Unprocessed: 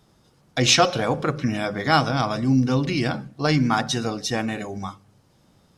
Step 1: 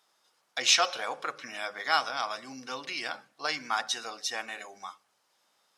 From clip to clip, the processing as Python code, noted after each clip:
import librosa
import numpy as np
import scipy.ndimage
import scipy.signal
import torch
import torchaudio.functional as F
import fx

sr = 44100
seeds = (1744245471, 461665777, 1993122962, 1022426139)

y = scipy.signal.sosfilt(scipy.signal.butter(2, 900.0, 'highpass', fs=sr, output='sos'), x)
y = F.gain(torch.from_numpy(y), -4.5).numpy()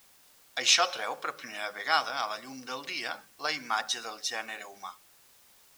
y = fx.quant_dither(x, sr, seeds[0], bits=10, dither='triangular')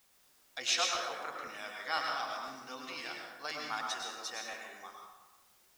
y = fx.rev_plate(x, sr, seeds[1], rt60_s=1.1, hf_ratio=0.6, predelay_ms=90, drr_db=0.0)
y = fx.buffer_crackle(y, sr, first_s=0.94, period_s=0.51, block=512, kind='repeat')
y = F.gain(torch.from_numpy(y), -9.0).numpy()